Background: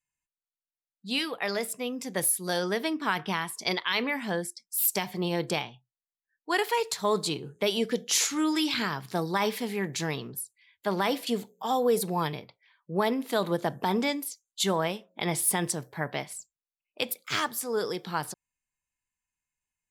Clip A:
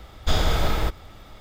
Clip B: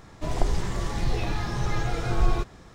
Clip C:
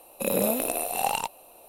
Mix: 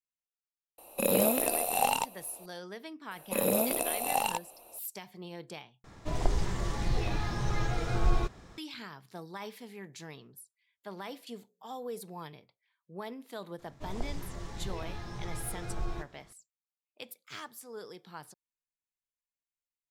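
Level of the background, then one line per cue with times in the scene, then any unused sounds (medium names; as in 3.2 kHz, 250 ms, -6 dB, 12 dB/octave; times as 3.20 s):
background -15 dB
0.78 s: add C -1 dB
3.11 s: add C -3 dB
5.84 s: replace with B -4 dB
13.59 s: add B -7.5 dB + feedback comb 86 Hz, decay 0.28 s
not used: A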